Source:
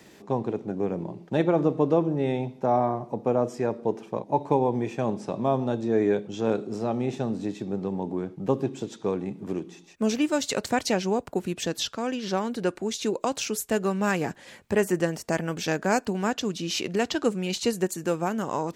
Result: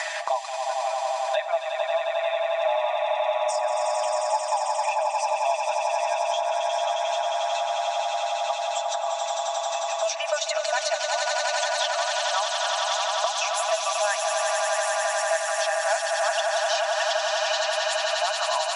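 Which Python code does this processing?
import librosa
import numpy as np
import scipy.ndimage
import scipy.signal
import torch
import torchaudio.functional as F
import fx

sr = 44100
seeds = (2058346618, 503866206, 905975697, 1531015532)

y = fx.envelope_sharpen(x, sr, power=1.5)
y = fx.brickwall_bandpass(y, sr, low_hz=580.0, high_hz=11000.0)
y = y + 0.75 * np.pad(y, (int(6.1 * sr / 1000.0), 0))[:len(y)]
y = fx.echo_swell(y, sr, ms=89, loudest=8, wet_db=-7.0)
y = fx.band_squash(y, sr, depth_pct=100)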